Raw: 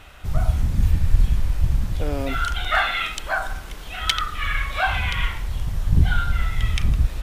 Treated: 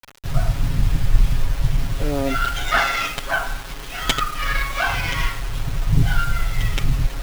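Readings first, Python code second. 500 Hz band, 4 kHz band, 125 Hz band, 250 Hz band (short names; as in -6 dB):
+3.5 dB, +1.0 dB, 0.0 dB, +3.5 dB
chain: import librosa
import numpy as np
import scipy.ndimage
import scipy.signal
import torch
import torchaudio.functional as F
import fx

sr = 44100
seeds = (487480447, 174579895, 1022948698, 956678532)

y = fx.quant_dither(x, sr, seeds[0], bits=6, dither='none')
y = y + 0.86 * np.pad(y, (int(7.3 * sr / 1000.0), 0))[:len(y)]
y = fx.running_max(y, sr, window=5)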